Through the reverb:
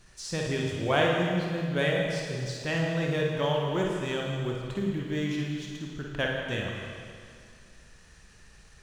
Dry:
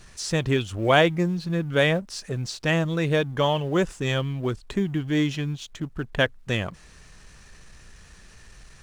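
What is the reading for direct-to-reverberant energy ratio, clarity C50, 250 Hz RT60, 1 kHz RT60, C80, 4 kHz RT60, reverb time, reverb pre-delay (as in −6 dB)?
−1.5 dB, −1.0 dB, 2.3 s, 2.2 s, 2.0 dB, 2.1 s, 2.2 s, 30 ms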